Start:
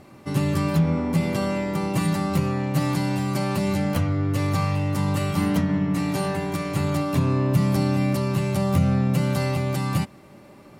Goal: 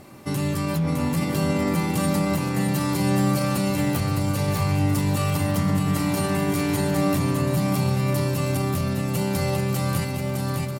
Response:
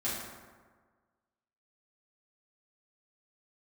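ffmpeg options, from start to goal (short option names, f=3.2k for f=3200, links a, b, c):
-af "highshelf=f=6.9k:g=10,alimiter=limit=-19dB:level=0:latency=1:release=38,aecho=1:1:610|1037|1336|1545|1692:0.631|0.398|0.251|0.158|0.1,volume=2dB"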